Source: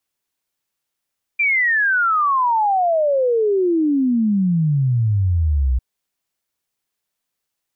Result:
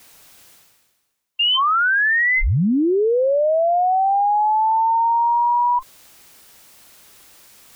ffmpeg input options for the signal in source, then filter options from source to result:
-f lavfi -i "aevalsrc='0.2*clip(min(t,4.4-t)/0.01,0,1)*sin(2*PI*2400*4.4/log(60/2400)*(exp(log(60/2400)*t/4.4)-1))':d=4.4:s=44100"
-af "afftfilt=real='real(if(between(b,1,1008),(2*floor((b-1)/48)+1)*48-b,b),0)':imag='imag(if(between(b,1,1008),(2*floor((b-1)/48)+1)*48-b,b),0)*if(between(b,1,1008),-1,1)':win_size=2048:overlap=0.75,areverse,acompressor=mode=upward:threshold=0.0708:ratio=2.5,areverse"

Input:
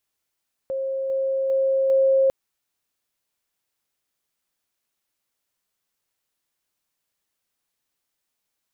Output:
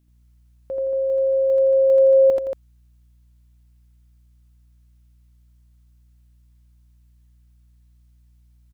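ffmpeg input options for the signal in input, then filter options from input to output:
-f lavfi -i "aevalsrc='pow(10,(-23.5+3*floor(t/0.4))/20)*sin(2*PI*536*t)':d=1.6:s=44100"
-af "aeval=exprs='val(0)+0.001*(sin(2*PI*60*n/s)+sin(2*PI*2*60*n/s)/2+sin(2*PI*3*60*n/s)/3+sin(2*PI*4*60*n/s)/4+sin(2*PI*5*60*n/s)/5)':c=same,aecho=1:1:67|82|85|167|170|231:0.119|0.668|0.335|0.119|0.237|0.447"

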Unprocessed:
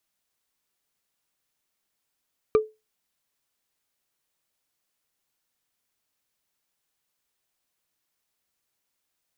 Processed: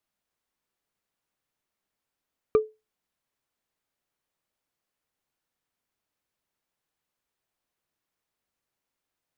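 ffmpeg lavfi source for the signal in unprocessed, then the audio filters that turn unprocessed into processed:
-f lavfi -i "aevalsrc='0.266*pow(10,-3*t/0.23)*sin(2*PI*433*t)+0.0944*pow(10,-3*t/0.068)*sin(2*PI*1193.8*t)+0.0335*pow(10,-3*t/0.03)*sin(2*PI*2339.9*t)+0.0119*pow(10,-3*t/0.017)*sin(2*PI*3868*t)+0.00422*pow(10,-3*t/0.01)*sin(2*PI*5776.2*t)':d=0.45:s=44100"
-af "highshelf=f=2700:g=-9.5"

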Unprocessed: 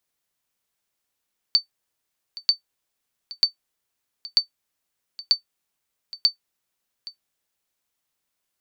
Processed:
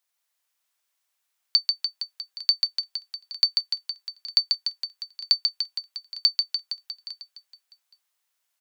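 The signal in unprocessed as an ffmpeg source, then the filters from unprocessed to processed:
-f lavfi -i "aevalsrc='0.422*(sin(2*PI*4550*mod(t,0.94))*exp(-6.91*mod(t,0.94)/0.11)+0.112*sin(2*PI*4550*max(mod(t,0.94)-0.82,0))*exp(-6.91*max(mod(t,0.94)-0.82,0)/0.11))':d=5.64:s=44100"
-filter_complex "[0:a]highpass=740,asplit=2[s0][s1];[s1]aecho=0:1:140|294|463.4|649.7|854.7:0.631|0.398|0.251|0.158|0.1[s2];[s0][s2]amix=inputs=2:normalize=0"

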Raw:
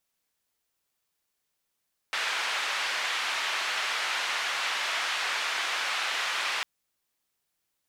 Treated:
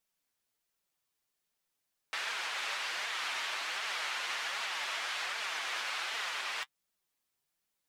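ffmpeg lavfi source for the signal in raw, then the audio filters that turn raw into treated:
-f lavfi -i "anoisesrc=c=white:d=4.5:r=44100:seed=1,highpass=f=1000,lowpass=f=2800,volume=-14.8dB"
-af "alimiter=limit=0.0708:level=0:latency=1:release=284,flanger=delay=4.2:depth=4.9:regen=40:speed=1.3:shape=triangular"

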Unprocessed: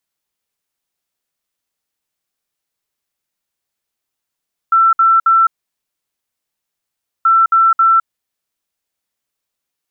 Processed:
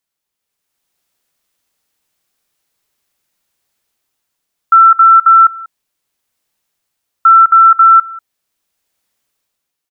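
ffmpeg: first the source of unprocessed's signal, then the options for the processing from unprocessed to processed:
-f lavfi -i "aevalsrc='0.447*sin(2*PI*1340*t)*clip(min(mod(mod(t,2.53),0.27),0.21-mod(mod(t,2.53),0.27))/0.005,0,1)*lt(mod(t,2.53),0.81)':d=5.06:s=44100"
-af "dynaudnorm=f=200:g=7:m=3.16,aecho=1:1:190:0.075"

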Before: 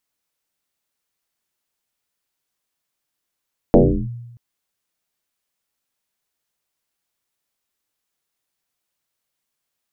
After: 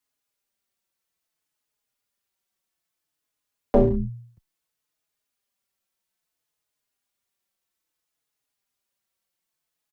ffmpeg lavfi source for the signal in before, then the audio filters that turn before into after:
-f lavfi -i "aevalsrc='0.562*pow(10,-3*t/1.03)*sin(2*PI*119*t+6.1*clip(1-t/0.35,0,1)*sin(2*PI*0.76*119*t))':d=0.63:s=44100"
-filter_complex "[0:a]acrossover=split=110|360|1100[s0][s1][s2][s3];[s1]asoftclip=type=hard:threshold=0.112[s4];[s0][s4][s2][s3]amix=inputs=4:normalize=0,asplit=2[s5][s6];[s6]adelay=4.3,afreqshift=-0.6[s7];[s5][s7]amix=inputs=2:normalize=1"

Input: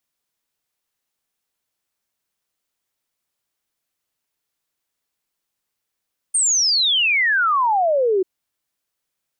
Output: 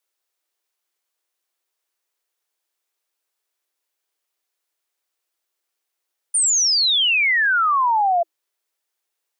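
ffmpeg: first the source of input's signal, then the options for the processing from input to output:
-f lavfi -i "aevalsrc='0.188*clip(min(t,1.89-t)/0.01,0,1)*sin(2*PI*9000*1.89/log(360/9000)*(exp(log(360/9000)*t/1.89)-1))':d=1.89:s=44100"
-af "afreqshift=310"

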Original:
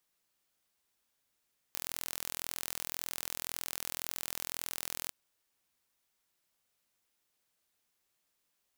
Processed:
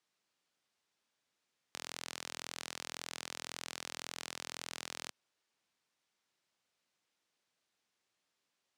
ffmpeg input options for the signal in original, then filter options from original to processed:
-f lavfi -i "aevalsrc='0.316*eq(mod(n,1053),0)':d=3.35:s=44100"
-af "highpass=120,lowpass=6200"

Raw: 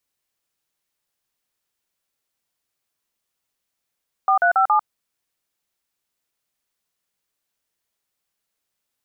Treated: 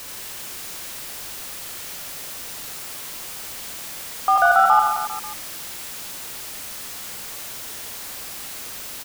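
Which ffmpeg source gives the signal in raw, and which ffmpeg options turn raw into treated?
-f lavfi -i "aevalsrc='0.158*clip(min(mod(t,0.139),0.097-mod(t,0.139))/0.002,0,1)*(eq(floor(t/0.139),0)*(sin(2*PI*770*mod(t,0.139))+sin(2*PI*1209*mod(t,0.139)))+eq(floor(t/0.139),1)*(sin(2*PI*697*mod(t,0.139))+sin(2*PI*1477*mod(t,0.139)))+eq(floor(t/0.139),2)*(sin(2*PI*770*mod(t,0.139))+sin(2*PI*1336*mod(t,0.139)))+eq(floor(t/0.139),3)*(sin(2*PI*852*mod(t,0.139))+sin(2*PI*1209*mod(t,0.139))))':d=0.556:s=44100"
-filter_complex "[0:a]aeval=exprs='val(0)+0.5*0.0316*sgn(val(0))':c=same,asplit=2[s0][s1];[s1]aecho=0:1:80|172|277.8|399.5|539.4:0.631|0.398|0.251|0.158|0.1[s2];[s0][s2]amix=inputs=2:normalize=0"

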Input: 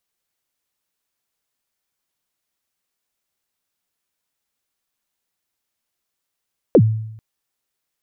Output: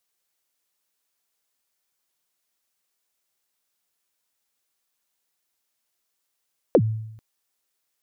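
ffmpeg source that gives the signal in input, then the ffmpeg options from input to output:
-f lavfi -i "aevalsrc='0.562*pow(10,-3*t/0.8)*sin(2*PI*(580*0.062/log(110/580)*(exp(log(110/580)*min(t,0.062)/0.062)-1)+110*max(t-0.062,0)))':d=0.44:s=44100"
-af "bass=f=250:g=-6,treble=f=4000:g=3,acompressor=threshold=0.2:ratio=6"

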